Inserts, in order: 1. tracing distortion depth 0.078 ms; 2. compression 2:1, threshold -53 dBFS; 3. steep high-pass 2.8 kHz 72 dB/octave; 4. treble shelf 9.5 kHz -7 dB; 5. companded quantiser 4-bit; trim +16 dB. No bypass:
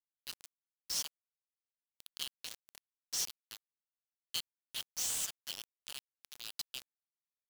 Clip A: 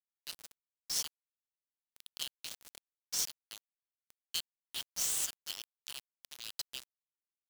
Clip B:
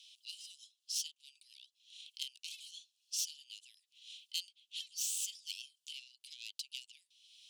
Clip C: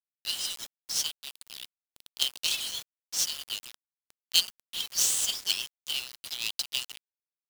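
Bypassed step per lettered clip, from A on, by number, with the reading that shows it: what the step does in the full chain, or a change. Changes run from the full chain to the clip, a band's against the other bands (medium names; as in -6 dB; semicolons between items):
4, crest factor change +5.5 dB; 5, crest factor change +2.5 dB; 2, mean gain reduction 12.5 dB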